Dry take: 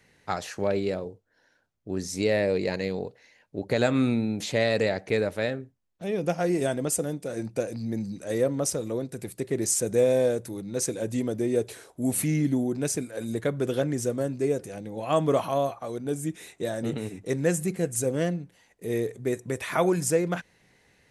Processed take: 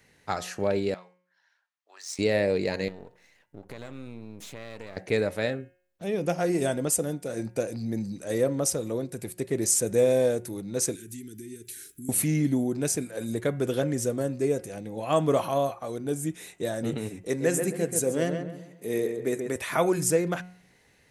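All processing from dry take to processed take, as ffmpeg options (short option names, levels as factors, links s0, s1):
-filter_complex "[0:a]asettb=1/sr,asplit=3[s0][s1][s2];[s0]atrim=end=0.944[s3];[s1]atrim=start=0.94:end=2.19,asetpts=PTS-STARTPTS,afade=t=in:d=0.004:c=qsin,afade=t=out:st=1.246:d=0.004:c=qsin,highpass=f=940:w=0.5412,highpass=f=940:w=1.3066,bandreject=f=1500:w=14,adynamicsmooth=sensitivity=7.5:basefreq=5600[s4];[s2]atrim=start=2.186[s5];[s3][s4]acrossfade=d=0.004:c1=hsin:c2=qsin[s6];[s6][s5]acrossfade=d=0.004:c1=qsin:c2=hsin,asettb=1/sr,asplit=3[s7][s8][s9];[s7]atrim=end=2.884[s10];[s8]atrim=start=2.88:end=4.97,asetpts=PTS-STARTPTS,afade=t=in:d=0.004:c=qsin,afade=t=out:st=2.086:d=0.004:c=qsin,aeval=exprs='if(lt(val(0),0),0.251*val(0),val(0))':c=same,equalizer=f=4500:t=o:w=0.27:g=-4.5,acompressor=threshold=0.00891:ratio=3:attack=3.2:release=140:knee=1:detection=peak[s11];[s9]atrim=start=4.966[s12];[s10][s11]acrossfade=d=0.004:c1=hsin:c2=qsin[s13];[s13][s12]acrossfade=d=0.004:c1=qsin:c2=hsin,asettb=1/sr,asplit=3[s14][s15][s16];[s14]atrim=end=10.954[s17];[s15]atrim=start=10.95:end=12.09,asetpts=PTS-STARTPTS,afade=t=in:d=0.004:c=qsin,afade=t=out:st=1.136:d=0.004:c=qsin,aemphasis=mode=production:type=50fm,acompressor=threshold=0.00891:ratio=3:attack=3.2:release=140:knee=1:detection=peak,asuperstop=centerf=760:order=12:qfactor=0.71[s18];[s16]atrim=start=12.086[s19];[s17][s18]acrossfade=d=0.004:c1=hsin:c2=qsin[s20];[s20][s19]acrossfade=d=0.004:c1=qsin:c2=hsin,asettb=1/sr,asplit=3[s21][s22][s23];[s21]atrim=end=17.274[s24];[s22]atrim=start=17.27:end=19.56,asetpts=PTS-STARTPTS,afade=t=in:d=0.004:c=qsin,afade=t=out:st=2.286:d=0.004:c=qsin,highpass=170,asplit=2[s25][s26];[s26]adelay=134,lowpass=f=2300:p=1,volume=0.531,asplit=2[s27][s28];[s28]adelay=134,lowpass=f=2300:p=1,volume=0.38,asplit=2[s29][s30];[s30]adelay=134,lowpass=f=2300:p=1,volume=0.38,asplit=2[s31][s32];[s32]adelay=134,lowpass=f=2300:p=1,volume=0.38,asplit=2[s33][s34];[s34]adelay=134,lowpass=f=2300:p=1,volume=0.38[s35];[s25][s27][s29][s31][s33][s35]amix=inputs=6:normalize=0,atrim=end_sample=100989[s36];[s23]atrim=start=19.556[s37];[s24][s36]acrossfade=d=0.004:c1=hsin:c2=qsin[s38];[s38][s37]acrossfade=d=0.004:c1=qsin:c2=hsin,highshelf=f=10000:g=6,bandreject=f=180.7:t=h:w=4,bandreject=f=361.4:t=h:w=4,bandreject=f=542.1:t=h:w=4,bandreject=f=722.8:t=h:w=4,bandreject=f=903.5:t=h:w=4,bandreject=f=1084.2:t=h:w=4,bandreject=f=1264.9:t=h:w=4,bandreject=f=1445.6:t=h:w=4,bandreject=f=1626.3:t=h:w=4,bandreject=f=1807:t=h:w=4,bandreject=f=1987.7:t=h:w=4,bandreject=f=2168.4:t=h:w=4,bandreject=f=2349.1:t=h:w=4,bandreject=f=2529.8:t=h:w=4,bandreject=f=2710.5:t=h:w=4,bandreject=f=2891.2:t=h:w=4,bandreject=f=3071.9:t=h:w=4"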